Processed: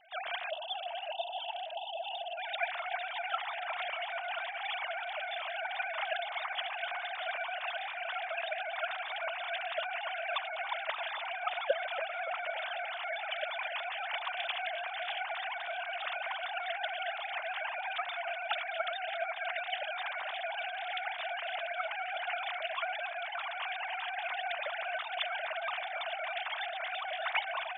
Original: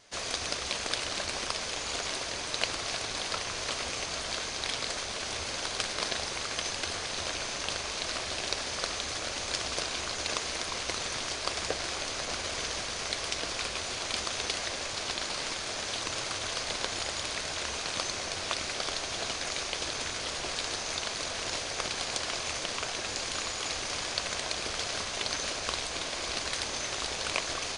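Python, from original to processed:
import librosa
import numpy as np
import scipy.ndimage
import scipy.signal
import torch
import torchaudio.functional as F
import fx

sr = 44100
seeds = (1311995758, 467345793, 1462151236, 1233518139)

y = fx.sine_speech(x, sr)
y = fx.spec_erase(y, sr, start_s=0.5, length_s=1.88, low_hz=980.0, high_hz=2600.0)
y = fx.echo_split(y, sr, split_hz=1200.0, low_ms=285, high_ms=624, feedback_pct=52, wet_db=-11.5)
y = y * 10.0 ** (-3.0 / 20.0)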